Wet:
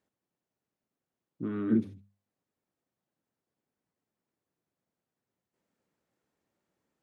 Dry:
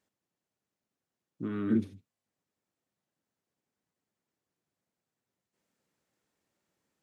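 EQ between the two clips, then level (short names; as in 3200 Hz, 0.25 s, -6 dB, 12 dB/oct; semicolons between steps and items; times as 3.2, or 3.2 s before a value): high shelf 2100 Hz -8.5 dB; notches 50/100/150/200 Hz; +1.5 dB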